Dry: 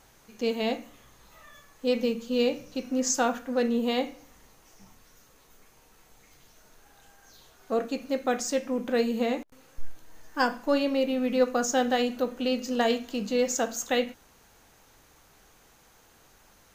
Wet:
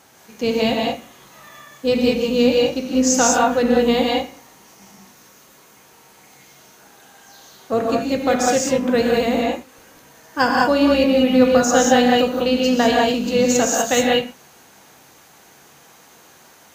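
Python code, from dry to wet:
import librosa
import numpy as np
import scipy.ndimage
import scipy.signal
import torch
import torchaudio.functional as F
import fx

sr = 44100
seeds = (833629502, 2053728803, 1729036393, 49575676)

y = fx.octave_divider(x, sr, octaves=2, level_db=-6.0)
y = scipy.signal.sosfilt(scipy.signal.butter(2, 150.0, 'highpass', fs=sr, output='sos'), y)
y = fx.rev_gated(y, sr, seeds[0], gate_ms=220, shape='rising', drr_db=-1.5)
y = F.gain(torch.from_numpy(y), 7.0).numpy()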